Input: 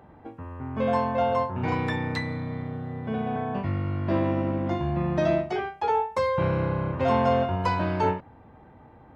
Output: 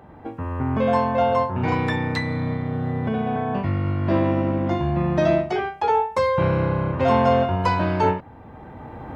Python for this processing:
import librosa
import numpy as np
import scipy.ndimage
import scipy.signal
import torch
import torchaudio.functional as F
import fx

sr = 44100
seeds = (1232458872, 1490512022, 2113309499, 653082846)

y = fx.recorder_agc(x, sr, target_db=-20.5, rise_db_per_s=12.0, max_gain_db=30)
y = F.gain(torch.from_numpy(y), 4.5).numpy()